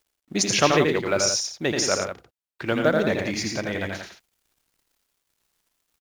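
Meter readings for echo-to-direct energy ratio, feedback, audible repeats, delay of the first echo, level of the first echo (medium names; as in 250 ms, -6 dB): -2.0 dB, no regular repeats, 3, 82 ms, -4.5 dB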